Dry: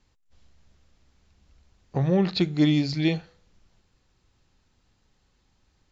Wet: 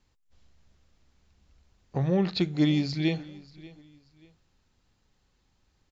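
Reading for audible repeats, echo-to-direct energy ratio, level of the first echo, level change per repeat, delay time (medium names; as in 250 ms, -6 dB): 2, -20.5 dB, -21.0 dB, -10.0 dB, 585 ms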